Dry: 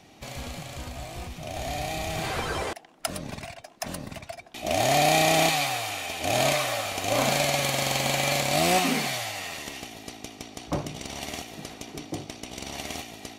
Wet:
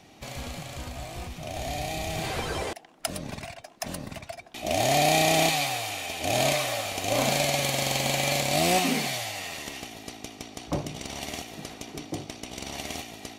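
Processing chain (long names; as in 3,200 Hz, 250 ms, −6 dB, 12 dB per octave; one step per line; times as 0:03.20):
dynamic equaliser 1,300 Hz, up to −5 dB, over −42 dBFS, Q 1.5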